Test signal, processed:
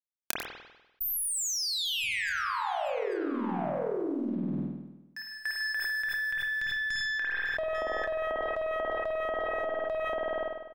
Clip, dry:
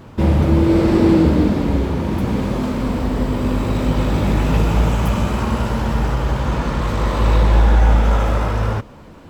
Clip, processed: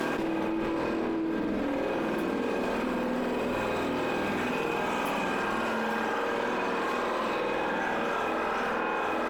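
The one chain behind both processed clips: HPF 250 Hz 24 dB/oct; reverb removal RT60 1.4 s; small resonant body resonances 1600/2500 Hz, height 14 dB, ringing for 95 ms; tube stage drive 19 dB, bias 0.35; crossover distortion -56 dBFS; doubler 28 ms -8 dB; tapped delay 96/115/843 ms -13/-19.5/-15 dB; spring tank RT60 1 s, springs 49 ms, chirp 45 ms, DRR -3 dB; fast leveller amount 100%; gain -16 dB

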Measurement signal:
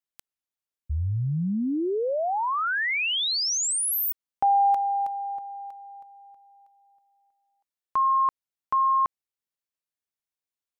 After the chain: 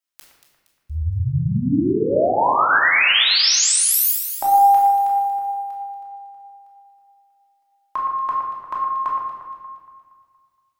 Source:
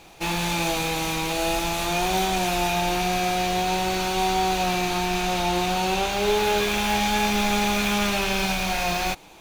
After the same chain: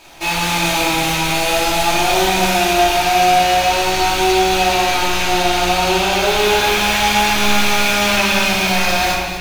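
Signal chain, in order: low shelf 460 Hz -9 dB; on a send: echo with dull and thin repeats by turns 0.117 s, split 2100 Hz, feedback 67%, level -6.5 dB; on the sum: shoebox room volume 860 m³, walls mixed, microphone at 2.8 m; gain +4 dB

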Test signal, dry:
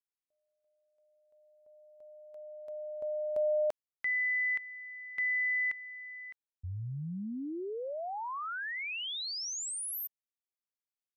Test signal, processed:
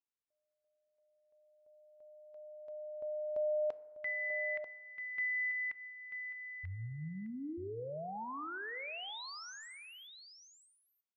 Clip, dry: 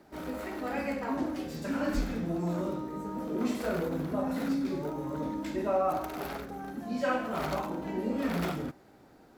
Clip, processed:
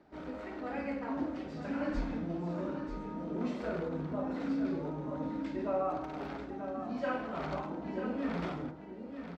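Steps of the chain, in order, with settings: air absorption 150 m; echo 0.939 s -8.5 dB; FDN reverb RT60 1.3 s, low-frequency decay 0.7×, high-frequency decay 0.35×, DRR 14.5 dB; gain -4.5 dB

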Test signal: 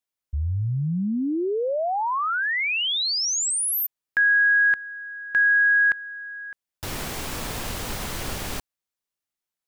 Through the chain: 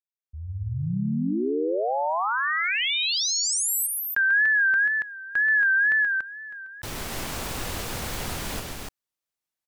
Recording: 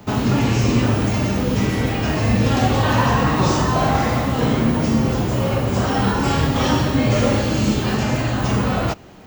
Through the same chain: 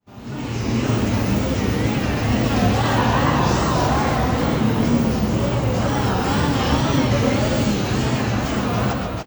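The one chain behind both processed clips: opening faded in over 0.96 s; loudspeakers at several distances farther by 46 m -6 dB, 98 m -3 dB; wow and flutter 100 cents; gain -3 dB

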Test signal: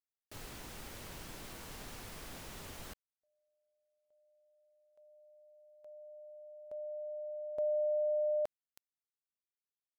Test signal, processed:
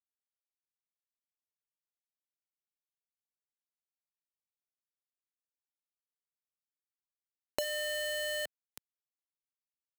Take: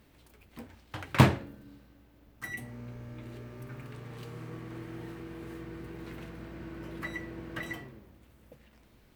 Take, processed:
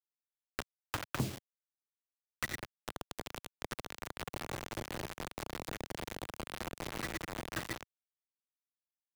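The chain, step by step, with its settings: treble ducked by the level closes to 450 Hz, closed at -30.5 dBFS; bit-crush 6-bit; three-band squash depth 100%; gain +1.5 dB

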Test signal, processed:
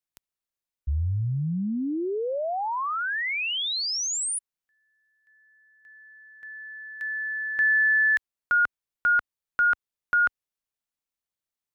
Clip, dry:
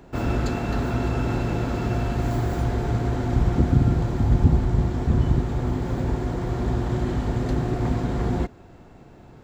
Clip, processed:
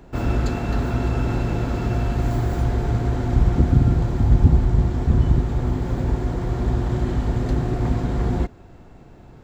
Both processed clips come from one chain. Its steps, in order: low shelf 71 Hz +7.5 dB

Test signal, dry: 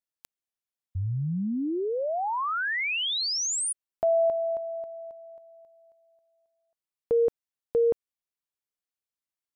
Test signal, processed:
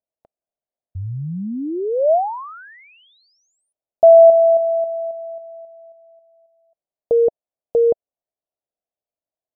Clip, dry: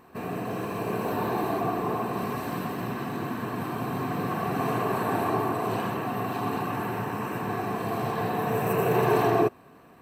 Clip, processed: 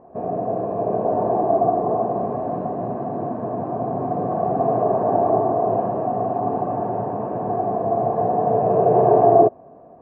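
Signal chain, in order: synth low-pass 650 Hz, resonance Q 4.9; gain +2 dB

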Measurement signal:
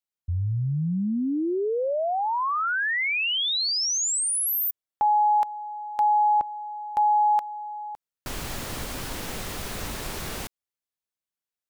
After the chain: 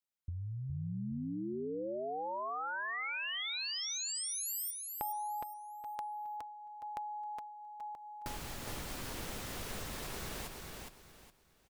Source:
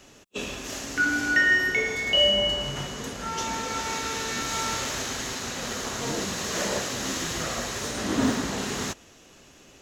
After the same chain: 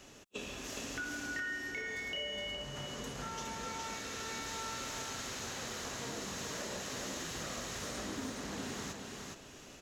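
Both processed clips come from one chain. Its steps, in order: compressor 5:1, threshold -37 dBFS; on a send: feedback echo 0.415 s, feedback 28%, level -4 dB; on the sum: gain -3.5 dB

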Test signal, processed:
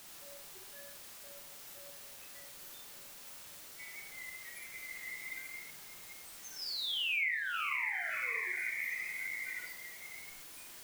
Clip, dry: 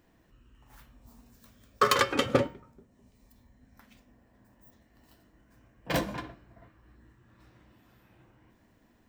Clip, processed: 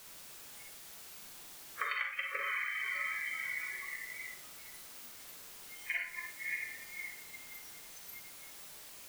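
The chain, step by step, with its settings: G.711 law mismatch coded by A; band-pass 2100 Hz, Q 7.7; diffused feedback echo 0.602 s, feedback 61%, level -5.5 dB; in parallel at -4.5 dB: requantised 6-bit, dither triangular; on the sum: spectral noise reduction 22 dB; compressor 6:1, threshold -44 dBFS; Schroeder reverb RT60 0.4 s, DRR 2 dB; gain +9 dB

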